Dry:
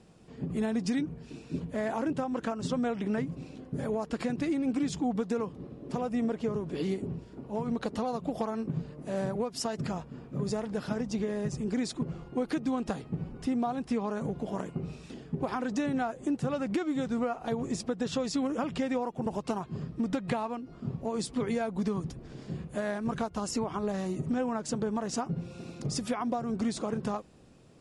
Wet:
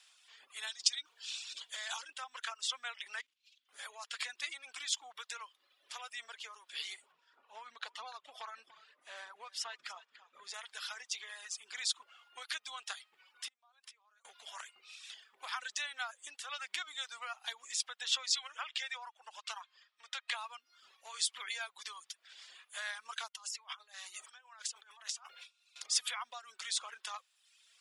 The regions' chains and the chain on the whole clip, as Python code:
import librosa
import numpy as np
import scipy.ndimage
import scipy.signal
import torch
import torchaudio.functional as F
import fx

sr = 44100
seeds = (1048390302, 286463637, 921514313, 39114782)

y = fx.chain(x, sr, fx.over_compress(threshold_db=-34.0, ratio=-1.0),
    fx.band_shelf(hz=5000.0, db=9.0, octaves=1.7), at=(0.67, 2.09))
y = fx.chain(y, sr, fx.lower_of_two(delay_ms=4.5),
    fx.curve_eq(hz=(230.0, 400.0, 710.0, 3000.0, 6200.0, 9500.0), db=(0, -9, -24, -2, -5, -10)),
    fx.level_steps(step_db=14), at=(3.21, 3.69))
y = fx.chain(y, sr, fx.riaa(side='playback'),
    fx.echo_single(ms=291, db=-13.5), at=(7.12, 10.54))
y = fx.chain(y, sr, fx.gate_flip(shuts_db=-29.0, range_db=-25),
    fx.pre_swell(db_per_s=26.0), at=(13.48, 14.25))
y = fx.chain(y, sr, fx.bandpass_edges(low_hz=480.0, high_hz=7300.0),
    fx.band_widen(depth_pct=40), at=(18.26, 20.35))
y = fx.chain(y, sr, fx.highpass(hz=470.0, slope=12),
    fx.gate_hold(open_db=-38.0, close_db=-50.0, hold_ms=71.0, range_db=-21, attack_ms=1.4, release_ms=100.0),
    fx.over_compress(threshold_db=-45.0, ratio=-1.0), at=(23.28, 25.76))
y = scipy.signal.sosfilt(scipy.signal.bessel(4, 2000.0, 'highpass', norm='mag', fs=sr, output='sos'), y)
y = fx.dereverb_blind(y, sr, rt60_s=0.92)
y = fx.peak_eq(y, sr, hz=3400.0, db=7.0, octaves=0.32)
y = y * librosa.db_to_amplitude(6.0)